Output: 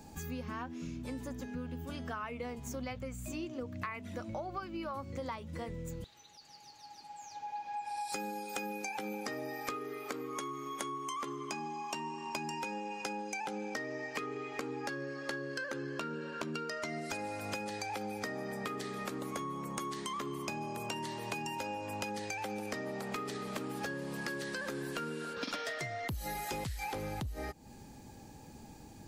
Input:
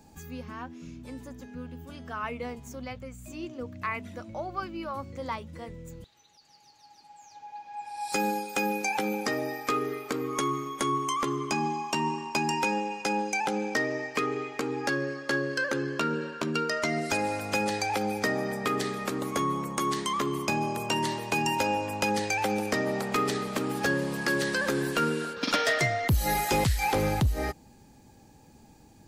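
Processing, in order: compressor 12:1, threshold -39 dBFS, peak gain reduction 19 dB; 9.75–12.29 low shelf 120 Hz -11.5 dB; gain +3 dB

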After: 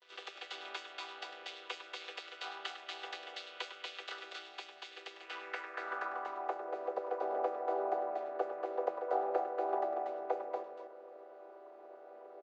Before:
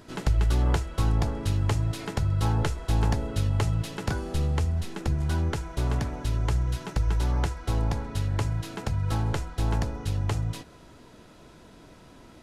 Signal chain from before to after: chord vocoder minor triad, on E3; elliptic high-pass 380 Hz, stop band 70 dB; gate with hold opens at -51 dBFS; on a send: loudspeakers at several distances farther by 35 m -11 dB, 81 m -4 dB; on the sum: band-pass sweep 3300 Hz -> 630 Hz, 5.15–6.73; gain +8 dB

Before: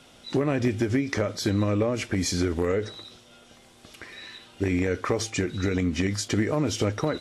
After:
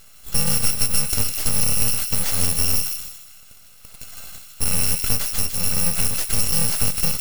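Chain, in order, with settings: FFT order left unsorted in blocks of 128 samples; full-wave rectifier; thin delay 0.156 s, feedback 32%, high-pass 2100 Hz, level -4.5 dB; gain +7 dB

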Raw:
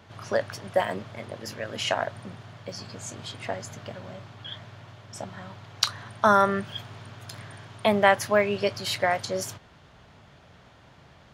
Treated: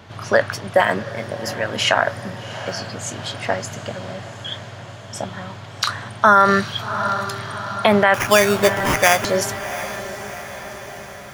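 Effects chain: dynamic EQ 1500 Hz, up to +7 dB, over -39 dBFS, Q 1.3; 8.14–9.25 sample-rate reducer 4100 Hz, jitter 0%; on a send: diffused feedback echo 0.741 s, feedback 57%, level -15 dB; on the sum: maximiser +10 dB; gain -1 dB

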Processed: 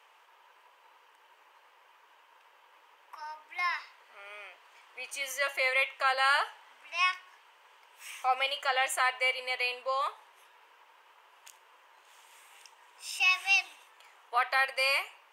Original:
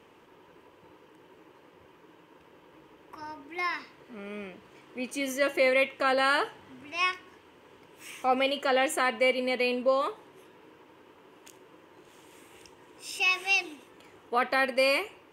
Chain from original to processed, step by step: HPF 720 Hz 24 dB/oct

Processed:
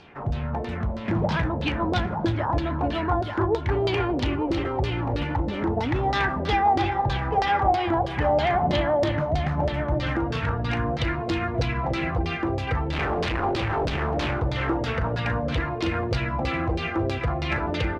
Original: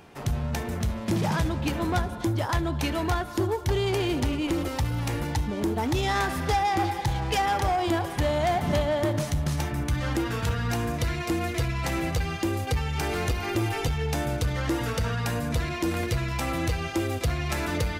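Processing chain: 12.92–14.31 Schmitt trigger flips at -35.5 dBFS; echo 0.886 s -7 dB; LFO low-pass saw down 3.1 Hz 520–4700 Hz

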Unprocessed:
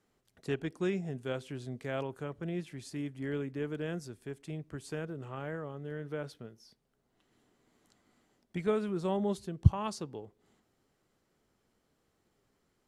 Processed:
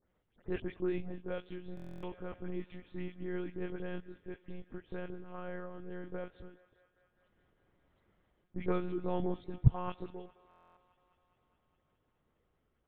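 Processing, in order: spectral delay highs late, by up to 0.141 s; monotone LPC vocoder at 8 kHz 180 Hz; air absorption 190 m; thinning echo 0.205 s, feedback 80%, high-pass 370 Hz, level -21 dB; stuck buffer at 1.75/10.49, samples 1024, times 11; gain -1.5 dB

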